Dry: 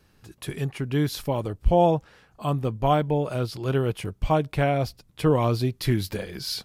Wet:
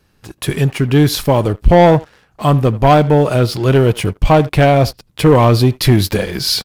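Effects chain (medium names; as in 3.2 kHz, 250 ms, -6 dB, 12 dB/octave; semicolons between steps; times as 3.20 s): speakerphone echo 80 ms, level -20 dB; waveshaping leveller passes 2; trim +7 dB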